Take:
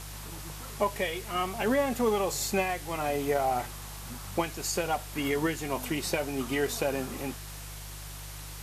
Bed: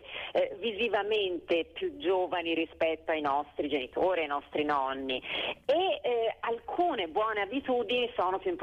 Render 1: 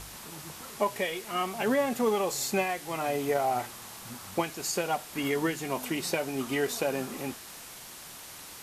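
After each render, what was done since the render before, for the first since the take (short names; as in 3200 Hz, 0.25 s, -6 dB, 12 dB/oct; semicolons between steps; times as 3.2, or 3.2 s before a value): de-hum 50 Hz, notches 3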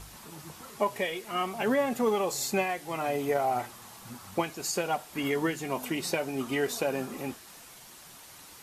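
denoiser 6 dB, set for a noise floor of -46 dBFS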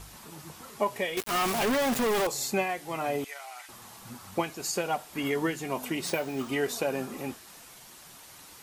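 1.17–2.27 companded quantiser 2-bit; 3.24–3.69 Butterworth band-pass 5200 Hz, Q 0.52; 6.06–6.49 careless resampling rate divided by 3×, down none, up hold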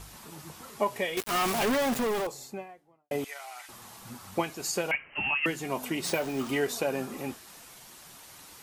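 1.66–3.11 studio fade out; 4.91–5.46 inverted band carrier 3000 Hz; 6.04–6.64 zero-crossing step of -41 dBFS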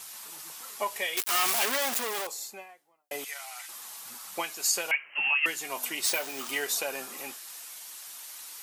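HPF 660 Hz 6 dB/oct; tilt +2.5 dB/oct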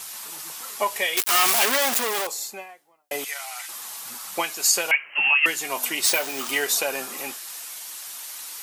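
gain +7 dB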